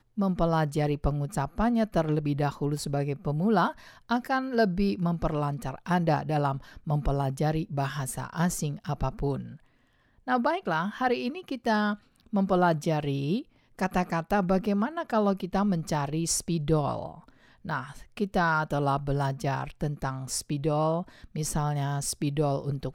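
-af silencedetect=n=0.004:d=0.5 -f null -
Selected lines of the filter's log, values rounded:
silence_start: 9.57
silence_end: 10.27 | silence_duration: 0.70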